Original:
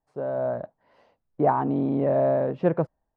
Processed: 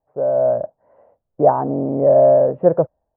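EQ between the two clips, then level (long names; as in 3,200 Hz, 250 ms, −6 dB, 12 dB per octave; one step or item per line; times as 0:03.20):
low-pass filter 1,700 Hz 24 dB per octave
parametric band 79 Hz +8.5 dB 2.1 octaves
parametric band 580 Hz +14.5 dB 1.1 octaves
−3.0 dB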